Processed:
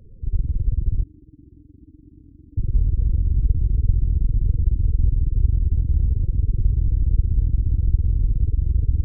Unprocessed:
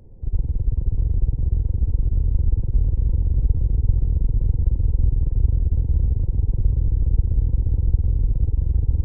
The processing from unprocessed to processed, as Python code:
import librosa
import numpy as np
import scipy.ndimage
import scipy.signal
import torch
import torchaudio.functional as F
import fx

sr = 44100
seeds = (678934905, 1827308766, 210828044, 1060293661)

y = fx.spec_topn(x, sr, count=16)
y = fx.vowel_filter(y, sr, vowel='u', at=(1.02, 2.56), fade=0.02)
y = fx.doppler_dist(y, sr, depth_ms=0.22)